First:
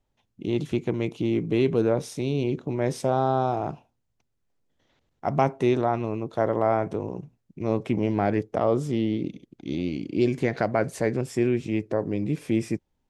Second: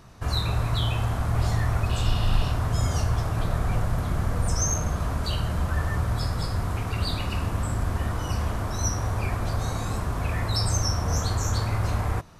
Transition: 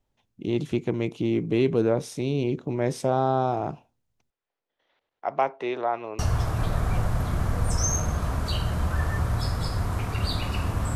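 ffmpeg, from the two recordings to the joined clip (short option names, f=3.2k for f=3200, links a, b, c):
-filter_complex "[0:a]asettb=1/sr,asplit=3[a][b][c];[a]atrim=end=4.304[d];[b]atrim=start=4.3:end=6.19,asetpts=PTS-STARTPTS,afade=t=in:d=0.004:c=qsin,afade=t=out:st=1.886:d=0.004:c=qsin,acrossover=split=420 4500:gain=0.0891 1 0.0708[e][f][g];[e][f][g]amix=inputs=3:normalize=0[h];[c]atrim=start=6.186[i];[d][h]acrossfade=d=0.004:c1=hsin:c2=qsin[j];[j][i]acrossfade=d=0.004:c1=qsin:c2=hsin,apad=whole_dur=10.95,atrim=end=10.95,atrim=end=6.192[k];[1:a]atrim=start=2.968:end=7.73[l];[k][l]acrossfade=d=0.004:c1=hsin:c2=hsin"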